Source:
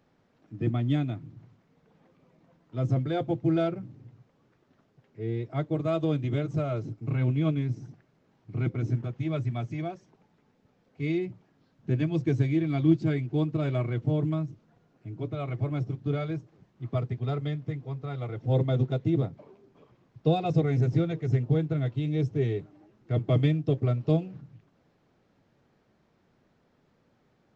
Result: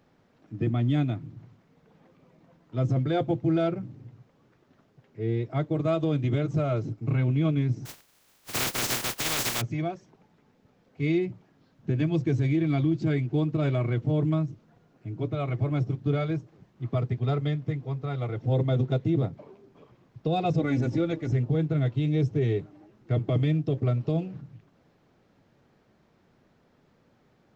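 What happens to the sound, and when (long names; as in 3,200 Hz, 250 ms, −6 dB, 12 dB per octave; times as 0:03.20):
0:07.85–0:09.60: compressing power law on the bin magnitudes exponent 0.16
0:20.59–0:21.32: comb filter 3.5 ms
whole clip: brickwall limiter −20.5 dBFS; level +3.5 dB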